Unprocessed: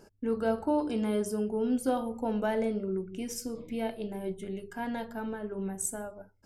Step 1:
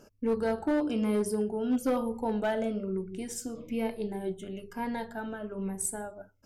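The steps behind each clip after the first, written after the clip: moving spectral ripple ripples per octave 0.88, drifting -1.1 Hz, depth 8 dB; hard clip -22 dBFS, distortion -17 dB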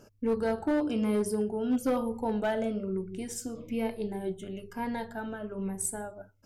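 bell 110 Hz +9.5 dB 0.29 oct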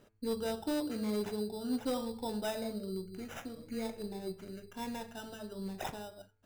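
sample-and-hold 10×; de-hum 109.8 Hz, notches 24; gain -6.5 dB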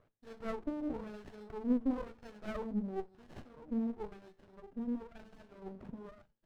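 wah 0.98 Hz 210–1800 Hz, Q 4.3; running maximum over 33 samples; gain +7.5 dB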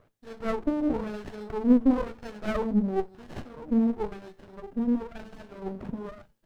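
AGC gain up to 4 dB; gain +7.5 dB

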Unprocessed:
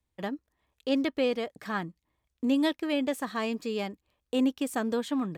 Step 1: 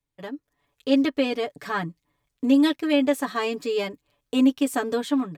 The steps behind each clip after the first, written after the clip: comb 7 ms, depth 90%; AGC gain up to 8.5 dB; gain -5 dB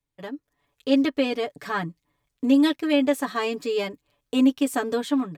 nothing audible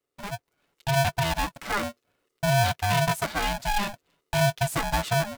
limiter -16 dBFS, peak gain reduction 7 dB; polarity switched at an audio rate 410 Hz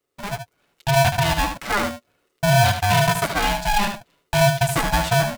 echo 75 ms -7.5 dB; gain +5.5 dB

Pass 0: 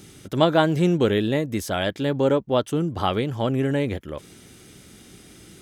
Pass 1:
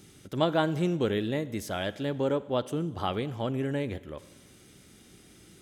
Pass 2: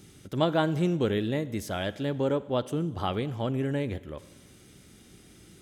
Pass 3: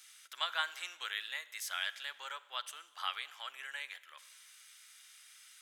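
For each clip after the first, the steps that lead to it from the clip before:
Schroeder reverb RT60 1.3 s, combs from 32 ms, DRR 16.5 dB; gain -7.5 dB
low shelf 180 Hz +4 dB
HPF 1300 Hz 24 dB/oct; gain +1 dB

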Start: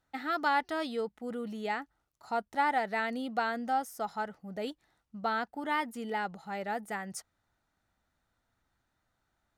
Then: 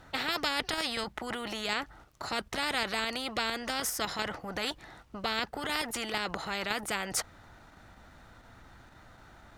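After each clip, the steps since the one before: in parallel at -1.5 dB: level quantiser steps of 16 dB; on the sum: LPF 3400 Hz 6 dB/oct; spectral compressor 4:1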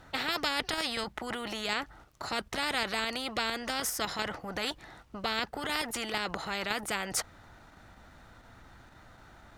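nothing audible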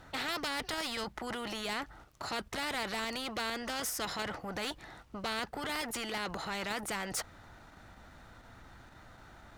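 soft clip -30.5 dBFS, distortion -10 dB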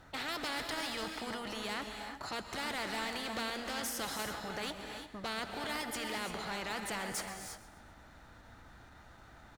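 feedback echo 0.13 s, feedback 46%, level -16 dB; non-linear reverb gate 0.37 s rising, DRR 4.5 dB; gain -3 dB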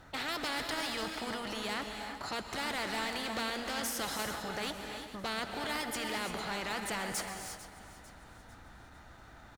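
feedback echo 0.448 s, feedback 45%, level -16 dB; gain +2 dB

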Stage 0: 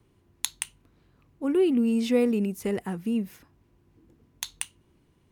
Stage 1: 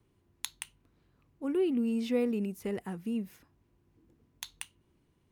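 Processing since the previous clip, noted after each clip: dynamic EQ 7900 Hz, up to -5 dB, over -49 dBFS, Q 1; gain -6.5 dB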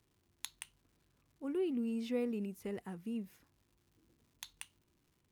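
crackle 260/s -56 dBFS; gain -6.5 dB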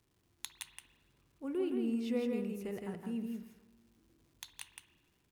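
echo 0.165 s -4 dB; on a send at -11 dB: reverb RT60 1.2 s, pre-delay 51 ms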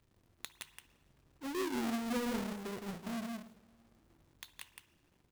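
half-waves squared off; gain -5.5 dB

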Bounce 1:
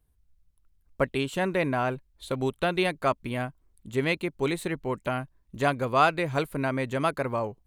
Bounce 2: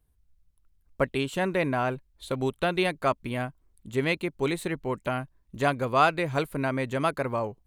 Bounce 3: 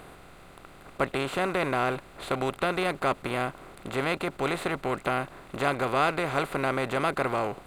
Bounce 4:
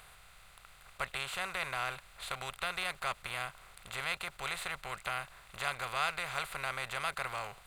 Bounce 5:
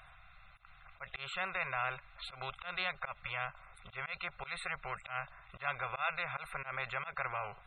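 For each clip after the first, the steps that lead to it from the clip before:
nothing audible
per-bin compression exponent 0.4; gain -6.5 dB
passive tone stack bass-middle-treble 10-0-10
loudest bins only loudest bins 64; auto swell 0.113 s; gain +1 dB

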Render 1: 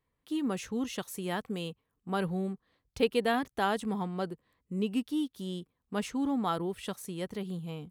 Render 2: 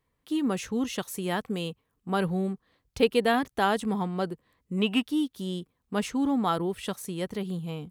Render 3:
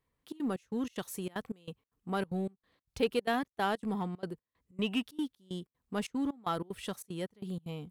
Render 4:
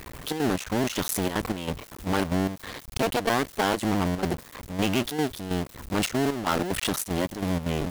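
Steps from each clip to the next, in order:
spectral gain 4.78–5.05, 600–3900 Hz +10 dB; gain +4.5 dB
step gate "xxxx.xx..xx." 188 bpm -24 dB; in parallel at -7.5 dB: hard clip -28 dBFS, distortion -6 dB; on the sum: gain -8 dB
cycle switcher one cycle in 2, muted; power-law curve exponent 0.35; gain +4 dB

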